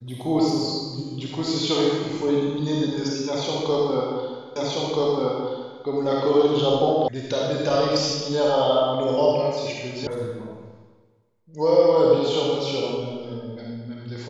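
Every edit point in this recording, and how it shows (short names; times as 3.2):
4.56 repeat of the last 1.28 s
7.08 sound cut off
10.07 sound cut off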